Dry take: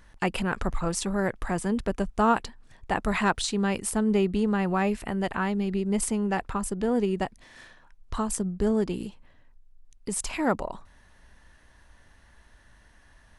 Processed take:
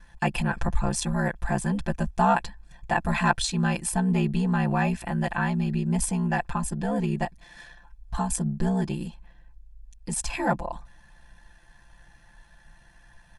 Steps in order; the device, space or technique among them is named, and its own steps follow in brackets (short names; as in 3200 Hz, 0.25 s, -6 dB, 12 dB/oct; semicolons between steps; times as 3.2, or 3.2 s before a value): comb 1.2 ms, depth 54%; ring-modulated robot voice (ring modulator 32 Hz; comb 5.8 ms, depth 97%)